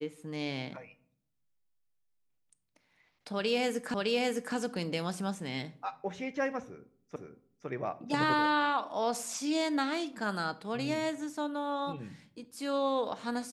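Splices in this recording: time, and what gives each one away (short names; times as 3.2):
3.94 repeat of the last 0.61 s
7.16 repeat of the last 0.51 s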